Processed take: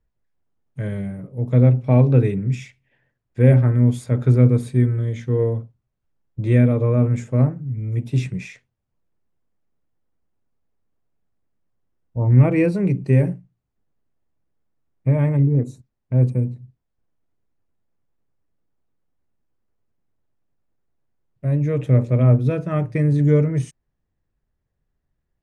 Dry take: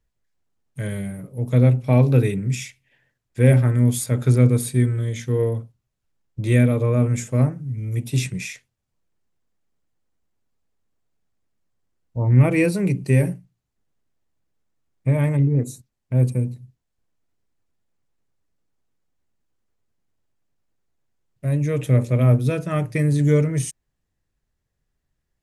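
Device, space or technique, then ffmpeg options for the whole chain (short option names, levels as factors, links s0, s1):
through cloth: -af "lowpass=8700,highshelf=f=2800:g=-15,volume=1.19"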